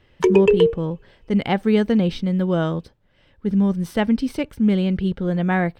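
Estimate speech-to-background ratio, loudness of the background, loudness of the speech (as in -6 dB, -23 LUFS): -3.5 dB, -18.0 LUFS, -21.5 LUFS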